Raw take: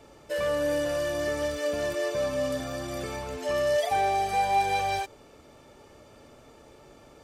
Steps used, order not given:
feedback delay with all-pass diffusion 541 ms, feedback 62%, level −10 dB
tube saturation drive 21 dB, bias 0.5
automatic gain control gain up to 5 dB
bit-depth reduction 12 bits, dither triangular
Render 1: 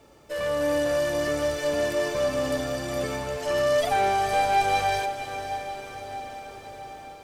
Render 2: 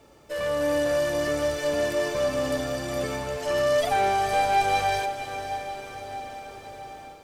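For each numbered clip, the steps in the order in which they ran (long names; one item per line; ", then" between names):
bit-depth reduction, then tube saturation, then automatic gain control, then feedback delay with all-pass diffusion
bit-depth reduction, then tube saturation, then feedback delay with all-pass diffusion, then automatic gain control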